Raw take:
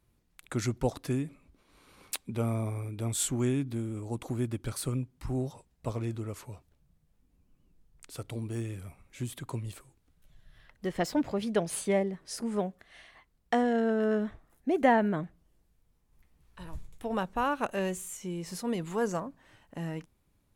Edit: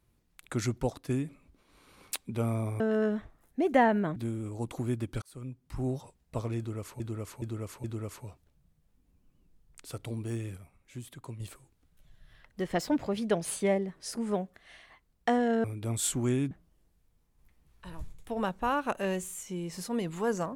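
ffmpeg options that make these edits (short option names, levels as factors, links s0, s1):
-filter_complex "[0:a]asplit=12[s0][s1][s2][s3][s4][s5][s6][s7][s8][s9][s10][s11];[s0]atrim=end=1.09,asetpts=PTS-STARTPTS,afade=t=out:st=0.75:d=0.34:silence=0.421697[s12];[s1]atrim=start=1.09:end=2.802,asetpts=PTS-STARTPTS,afade=t=in:d=0.004:c=hsin:silence=0.421697[s13];[s2]atrim=start=13.888:end=15.252[s14];[s3]atrim=start=3.668:end=4.73,asetpts=PTS-STARTPTS,afade=t=out:st=1.058:d=0.004:c=hsin[s15];[s4]atrim=start=4.73:end=6.512,asetpts=PTS-STARTPTS,afade=t=in:d=0.64[s16];[s5]atrim=start=6.088:end=6.512[s17];[s6]atrim=start=6.088:end=6.512[s18];[s7]atrim=start=6.088:end=8.822[s19];[s8]atrim=start=8.818:end=9.652,asetpts=PTS-STARTPTS,volume=0.473[s20];[s9]atrim=start=9.648:end=13.892[s21];[s10]atrim=start=2.798:end=3.672[s22];[s11]atrim=start=15.248[s23];[s12][s13]concat=n=2:v=0:a=1[s24];[s24][s14]acrossfade=d=0.004:c1=hsin:c2=hsin[s25];[s15][s16]concat=n=2:v=0:a=1[s26];[s25][s26]acrossfade=d=0.004:c1=hsin:c2=hsin[s27];[s27][s17]acrossfade=d=0.004:c1=hsin:c2=hsin[s28];[s28][s18]acrossfade=d=0.004:c1=hsin:c2=hsin[s29];[s29][s19]acrossfade=d=0.004:c1=hsin:c2=hsin[s30];[s30][s20]acrossfade=d=0.004:c1=hsin:c2=hsin[s31];[s31][s21]acrossfade=d=0.004:c1=hsin:c2=hsin[s32];[s32][s22]acrossfade=d=0.004:c1=hsin:c2=hsin[s33];[s33][s23]acrossfade=d=0.004:c1=hsin:c2=hsin"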